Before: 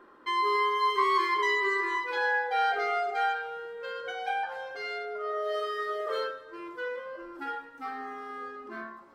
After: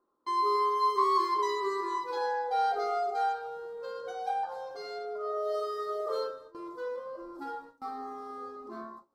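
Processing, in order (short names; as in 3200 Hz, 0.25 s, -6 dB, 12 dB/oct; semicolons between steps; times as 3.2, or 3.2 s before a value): gate with hold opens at -35 dBFS; band shelf 2200 Hz -15.5 dB 1.3 oct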